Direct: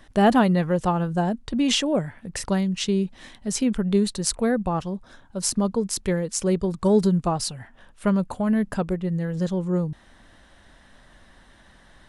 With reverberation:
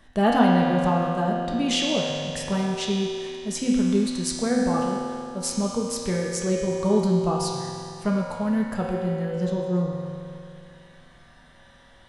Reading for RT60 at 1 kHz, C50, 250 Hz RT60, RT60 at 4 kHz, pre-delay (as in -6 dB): 2.5 s, -0.5 dB, 2.5 s, 2.5 s, 4 ms